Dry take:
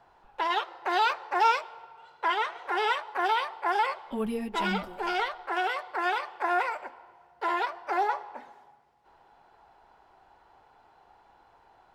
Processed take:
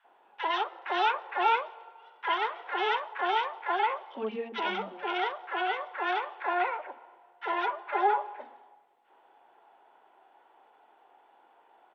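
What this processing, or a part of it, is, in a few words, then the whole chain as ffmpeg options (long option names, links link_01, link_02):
Bluetooth headset: -filter_complex "[0:a]asettb=1/sr,asplit=3[link_01][link_02][link_03];[link_01]atrim=end=7.624[link_04];[link_02]atrim=start=7.62:end=8.37,asetpts=PTS-STARTPTS,afade=type=in:duration=0.004:curve=qsin,afade=type=out:start_time=0.746:duration=0.004:curve=qsin,aecho=1:1:4.9:0.73,atrim=end_sample=33075[link_05];[link_03]atrim=start=8.366[link_06];[link_04][link_05]acrossfade=duration=0.004:curve1=hsin:curve2=qsin[link_07];[link_07][link_06]acrossfade=duration=0.004:curve1=qsin:curve2=hsin,highpass=frequency=250:width=0.5412,highpass=frequency=250:width=1.3066,acrossover=split=210|1300[link_08][link_09][link_10];[link_09]adelay=40[link_11];[link_08]adelay=90[link_12];[link_12][link_11][link_10]amix=inputs=3:normalize=0,aresample=8000,aresample=44100" -ar 32000 -c:a sbc -b:a 64k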